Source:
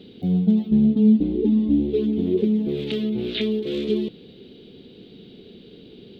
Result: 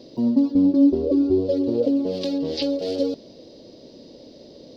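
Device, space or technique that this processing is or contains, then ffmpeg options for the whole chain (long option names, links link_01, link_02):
nightcore: -af "asetrate=57330,aresample=44100"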